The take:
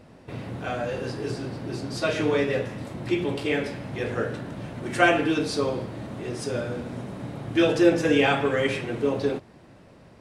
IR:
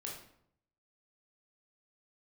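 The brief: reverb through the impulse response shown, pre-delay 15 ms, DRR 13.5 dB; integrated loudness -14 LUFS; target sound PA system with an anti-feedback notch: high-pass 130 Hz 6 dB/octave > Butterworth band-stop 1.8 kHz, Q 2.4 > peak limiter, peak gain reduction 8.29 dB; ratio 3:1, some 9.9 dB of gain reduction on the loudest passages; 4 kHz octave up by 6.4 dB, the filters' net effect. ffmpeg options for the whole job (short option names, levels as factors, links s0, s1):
-filter_complex "[0:a]equalizer=f=4000:t=o:g=8.5,acompressor=threshold=0.0447:ratio=3,asplit=2[s0][s1];[1:a]atrim=start_sample=2205,adelay=15[s2];[s1][s2]afir=irnorm=-1:irlink=0,volume=0.251[s3];[s0][s3]amix=inputs=2:normalize=0,highpass=f=130:p=1,asuperstop=centerf=1800:order=8:qfactor=2.4,volume=10,alimiter=limit=0.631:level=0:latency=1"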